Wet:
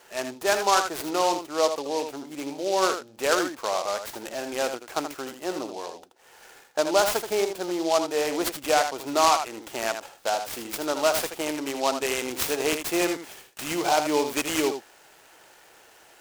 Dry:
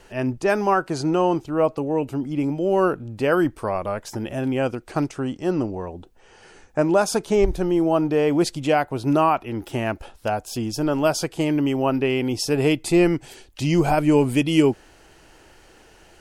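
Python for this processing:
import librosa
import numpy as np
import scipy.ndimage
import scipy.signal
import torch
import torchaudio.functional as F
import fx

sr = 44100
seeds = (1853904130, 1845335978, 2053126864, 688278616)

y = scipy.signal.sosfilt(scipy.signal.butter(2, 570.0, 'highpass', fs=sr, output='sos'), x)
y = y + 10.0 ** (-8.0 / 20.0) * np.pad(y, (int(79 * sr / 1000.0), 0))[:len(y)]
y = fx.noise_mod_delay(y, sr, seeds[0], noise_hz=4300.0, depth_ms=0.058)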